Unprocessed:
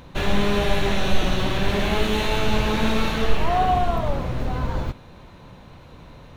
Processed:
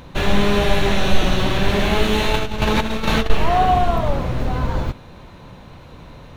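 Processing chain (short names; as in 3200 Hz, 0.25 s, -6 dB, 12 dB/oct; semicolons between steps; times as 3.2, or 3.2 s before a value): 2.31–3.3 negative-ratio compressor -22 dBFS, ratio -0.5; gain +4 dB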